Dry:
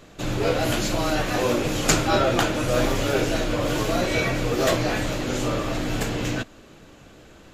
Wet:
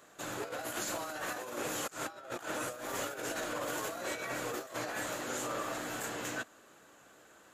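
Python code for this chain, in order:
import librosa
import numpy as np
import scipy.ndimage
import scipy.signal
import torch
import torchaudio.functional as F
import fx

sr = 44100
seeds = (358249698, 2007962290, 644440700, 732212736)

y = fx.highpass(x, sr, hz=1400.0, slope=6)
y = fx.band_shelf(y, sr, hz=3500.0, db=-9.0, octaves=1.7)
y = fx.over_compress(y, sr, threshold_db=-34.0, ratio=-0.5)
y = y * 10.0 ** (-4.0 / 20.0)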